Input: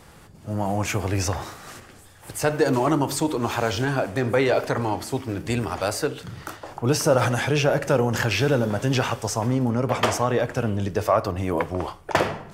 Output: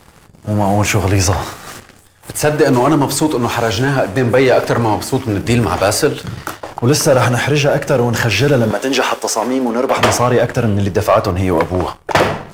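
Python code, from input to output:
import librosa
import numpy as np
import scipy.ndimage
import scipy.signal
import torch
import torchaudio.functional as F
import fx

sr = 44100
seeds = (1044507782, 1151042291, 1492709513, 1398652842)

y = fx.highpass(x, sr, hz=270.0, slope=24, at=(8.71, 9.97))
y = fx.rider(y, sr, range_db=4, speed_s=2.0)
y = fx.leveller(y, sr, passes=2)
y = y * librosa.db_to_amplitude(2.5)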